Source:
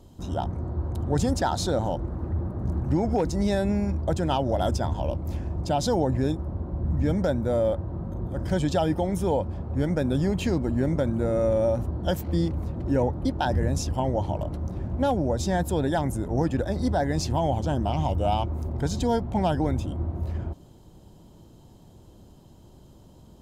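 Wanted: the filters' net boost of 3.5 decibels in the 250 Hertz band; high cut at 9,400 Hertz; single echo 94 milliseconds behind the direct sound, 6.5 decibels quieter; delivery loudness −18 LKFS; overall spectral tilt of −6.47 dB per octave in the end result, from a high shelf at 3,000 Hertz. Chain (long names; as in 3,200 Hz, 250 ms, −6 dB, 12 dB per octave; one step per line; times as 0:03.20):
low-pass filter 9,400 Hz
parametric band 250 Hz +4.5 dB
high-shelf EQ 3,000 Hz +8.5 dB
single-tap delay 94 ms −6.5 dB
level +5.5 dB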